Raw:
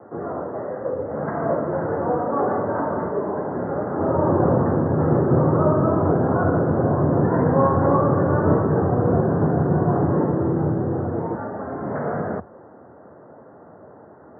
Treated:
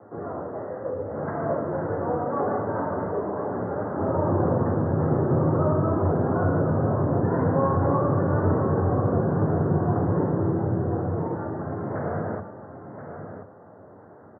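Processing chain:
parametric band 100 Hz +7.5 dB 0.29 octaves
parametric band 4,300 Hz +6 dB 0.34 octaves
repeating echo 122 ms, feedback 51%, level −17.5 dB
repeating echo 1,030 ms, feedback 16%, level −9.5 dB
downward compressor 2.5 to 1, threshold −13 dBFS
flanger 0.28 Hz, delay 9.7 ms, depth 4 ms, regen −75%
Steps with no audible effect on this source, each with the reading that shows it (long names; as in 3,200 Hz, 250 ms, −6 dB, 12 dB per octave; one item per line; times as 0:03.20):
parametric band 4,300 Hz: nothing at its input above 1,500 Hz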